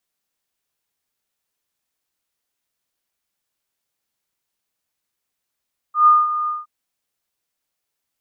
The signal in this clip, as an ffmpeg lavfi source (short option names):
-f lavfi -i "aevalsrc='0.447*sin(2*PI*1220*t)':d=0.718:s=44100,afade=t=in:d=0.126,afade=t=out:st=0.126:d=0.205:silence=0.251,afade=t=out:st=0.54:d=0.178"